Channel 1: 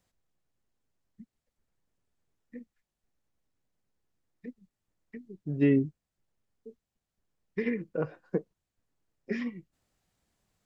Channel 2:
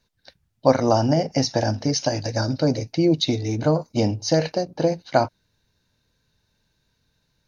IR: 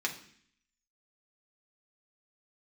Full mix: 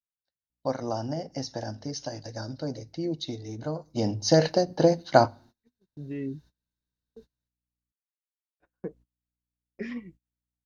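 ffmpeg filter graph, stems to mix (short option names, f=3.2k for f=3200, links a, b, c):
-filter_complex "[0:a]alimiter=limit=-22dB:level=0:latency=1:release=147,aeval=exprs='val(0)+0.000794*(sin(2*PI*60*n/s)+sin(2*PI*2*60*n/s)/2+sin(2*PI*3*60*n/s)/3+sin(2*PI*4*60*n/s)/4+sin(2*PI*5*60*n/s)/5)':c=same,adelay=500,volume=-1.5dB,asplit=3[a][b][c];[a]atrim=end=7.92,asetpts=PTS-STARTPTS,afade=t=out:st=7.916:d=0.004:c=hsin[d];[b]atrim=start=7.92:end=8.6,asetpts=PTS-STARTPTS,volume=0[e];[c]atrim=start=8.6,asetpts=PTS-STARTPTS,afade=t=in:d=0.004:c=hsin[f];[d][e][f]concat=n=3:v=0:a=1[g];[1:a]equalizer=f=2.4k:t=o:w=0.25:g=-10.5,bandreject=f=50:t=h:w=6,bandreject=f=100:t=h:w=6,afade=t=in:st=3.85:d=0.55:silence=0.223872,asplit=3[h][i][j];[i]volume=-21.5dB[k];[j]apad=whole_len=492073[l];[g][l]sidechaincompress=threshold=-35dB:ratio=3:attack=8.6:release=737[m];[2:a]atrim=start_sample=2205[n];[k][n]afir=irnorm=-1:irlink=0[o];[m][h][o]amix=inputs=3:normalize=0,agate=range=-26dB:threshold=-51dB:ratio=16:detection=peak"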